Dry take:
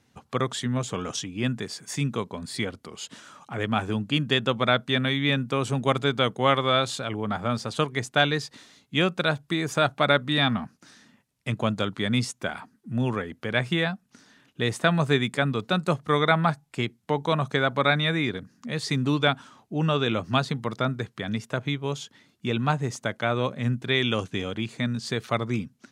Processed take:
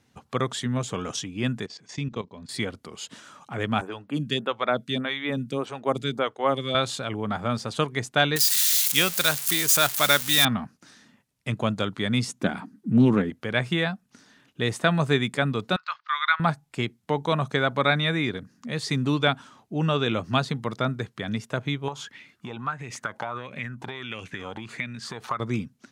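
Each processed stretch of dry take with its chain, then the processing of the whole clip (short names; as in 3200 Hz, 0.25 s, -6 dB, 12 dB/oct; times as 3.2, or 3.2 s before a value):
1.66–2.49 LPF 6000 Hz 24 dB/oct + bell 1400 Hz -5.5 dB 0.47 oct + level quantiser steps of 14 dB
3.81–6.75 HPF 130 Hz + photocell phaser 1.7 Hz
8.36–10.45 switching spikes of -19 dBFS + tilt shelf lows -6 dB, about 1200 Hz
12.28–13.3 small resonant body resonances 200/280 Hz, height 13 dB + Doppler distortion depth 0.18 ms
15.76–16.4 elliptic band-pass 1100–4800 Hz, stop band 50 dB + bell 1500 Hz +5 dB 0.21 oct
21.88–25.4 compressor 12:1, threshold -33 dBFS + LFO bell 1.5 Hz 830–2500 Hz +18 dB
whole clip: dry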